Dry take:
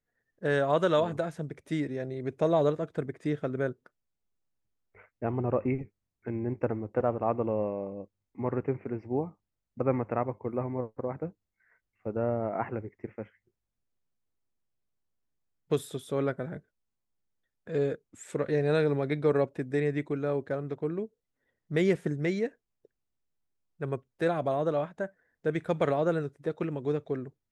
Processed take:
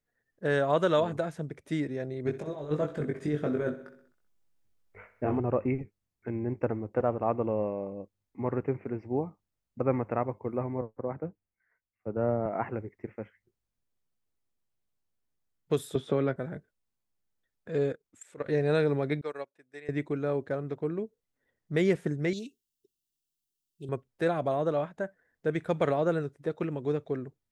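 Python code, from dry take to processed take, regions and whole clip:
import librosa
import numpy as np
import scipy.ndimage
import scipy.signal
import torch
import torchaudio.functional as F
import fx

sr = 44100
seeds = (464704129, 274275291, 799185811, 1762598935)

y = fx.chain(x, sr, fx.over_compress(threshold_db=-30.0, ratio=-0.5),
    fx.doubler(ms=20.0, db=-3.5),
    fx.echo_feedback(ms=64, feedback_pct=59, wet_db=-14.0), at=(2.25, 5.4))
y = fx.chain(y, sr, fx.lowpass(hz=2400.0, slope=12),
    fx.resample_bad(factor=8, down='none', up='filtered'),
    fx.band_widen(depth_pct=40), at=(10.81, 12.46))
y = fx.chain(y, sr, fx.lowpass(hz=4500.0, slope=12),
    fx.doubler(ms=15.0, db=-11.5),
    fx.band_squash(depth_pct=100), at=(15.95, 16.36))
y = fx.chain(y, sr, fx.low_shelf(hz=350.0, db=-6.5),
    fx.level_steps(step_db=15), at=(17.92, 18.46))
y = fx.chain(y, sr, fx.highpass(hz=1400.0, slope=6),
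    fx.upward_expand(threshold_db=-43.0, expansion=2.5), at=(19.21, 19.89))
y = fx.chain(y, sr, fx.brickwall_bandstop(low_hz=430.0, high_hz=2600.0),
    fx.tilt_eq(slope=2.5),
    fx.doppler_dist(depth_ms=0.11), at=(22.33, 23.89))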